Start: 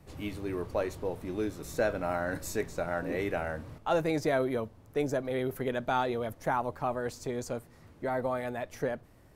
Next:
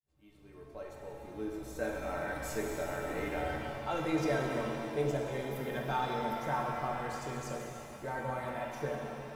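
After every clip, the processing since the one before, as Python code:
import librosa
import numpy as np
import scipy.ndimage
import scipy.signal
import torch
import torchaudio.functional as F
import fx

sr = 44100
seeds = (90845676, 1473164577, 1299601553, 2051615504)

y = fx.fade_in_head(x, sr, length_s=2.49)
y = fx.stiff_resonator(y, sr, f0_hz=66.0, decay_s=0.2, stiffness=0.03)
y = fx.rev_shimmer(y, sr, seeds[0], rt60_s=2.8, semitones=7, shimmer_db=-8, drr_db=-0.5)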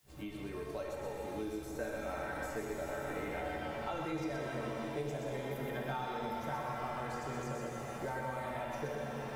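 y = x + 10.0 ** (-4.0 / 20.0) * np.pad(x, (int(123 * sr / 1000.0), 0))[:len(x)]
y = fx.band_squash(y, sr, depth_pct=100)
y = F.gain(torch.from_numpy(y), -5.5).numpy()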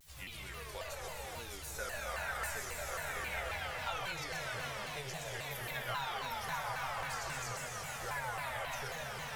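y = fx.tone_stack(x, sr, knobs='10-0-10')
y = fx.vibrato_shape(y, sr, shape='saw_down', rate_hz=3.7, depth_cents=250.0)
y = F.gain(torch.from_numpy(y), 10.5).numpy()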